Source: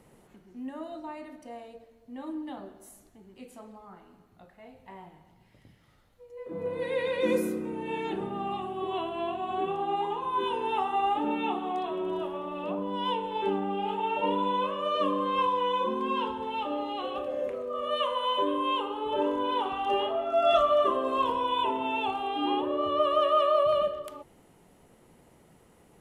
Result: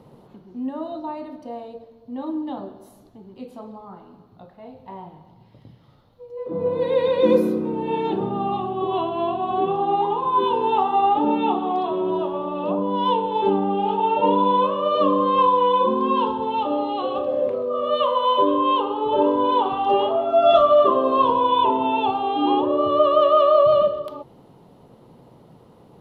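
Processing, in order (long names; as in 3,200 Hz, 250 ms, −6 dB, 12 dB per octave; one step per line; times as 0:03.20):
graphic EQ with 10 bands 125 Hz +12 dB, 250 Hz +6 dB, 500 Hz +7 dB, 1,000 Hz +9 dB, 2,000 Hz −6 dB, 4,000 Hz +10 dB, 8,000 Hz −11 dB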